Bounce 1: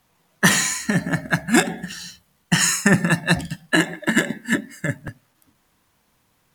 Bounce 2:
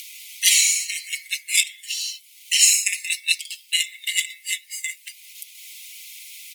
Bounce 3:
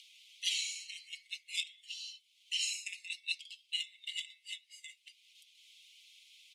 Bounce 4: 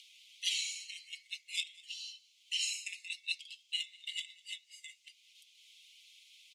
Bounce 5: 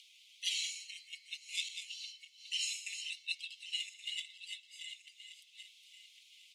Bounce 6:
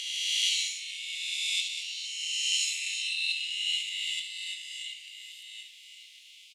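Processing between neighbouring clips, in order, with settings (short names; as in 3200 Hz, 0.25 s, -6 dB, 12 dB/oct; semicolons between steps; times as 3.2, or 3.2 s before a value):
Chebyshev high-pass 2100 Hz, order 8; comb 4.9 ms, depth 72%; upward compressor, threshold -25 dBFS; gain +4 dB
ladder band-pass 3600 Hz, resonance 50%; gain -7.5 dB
band noise 4000–7400 Hz -77 dBFS; echo 0.201 s -23.5 dB
regenerating reverse delay 0.563 s, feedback 49%, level -8 dB; gain -2 dB
spectral swells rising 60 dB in 2.36 s; flange 1.8 Hz, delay 6.6 ms, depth 4.7 ms, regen +78%; on a send: echo 70 ms -9.5 dB; on the sum: gain +8 dB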